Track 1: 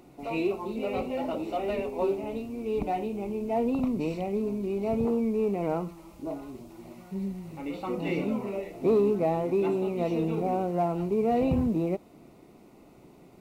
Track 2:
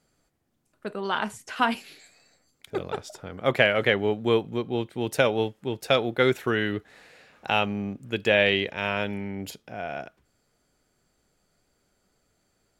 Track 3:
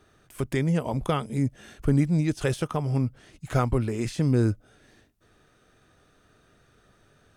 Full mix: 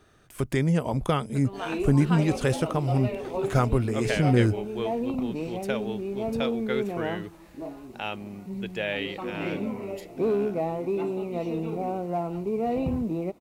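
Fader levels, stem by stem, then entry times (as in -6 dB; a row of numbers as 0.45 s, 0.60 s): -2.0 dB, -9.5 dB, +1.0 dB; 1.35 s, 0.50 s, 0.00 s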